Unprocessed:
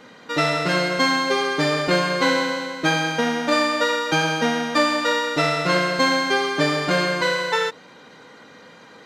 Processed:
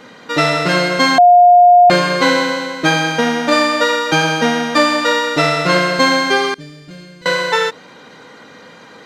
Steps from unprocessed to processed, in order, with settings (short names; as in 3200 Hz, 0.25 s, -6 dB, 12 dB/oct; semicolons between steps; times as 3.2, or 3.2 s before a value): 1.18–1.9 bleep 710 Hz -9.5 dBFS; 6.54–7.26 passive tone stack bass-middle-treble 10-0-1; gain +6 dB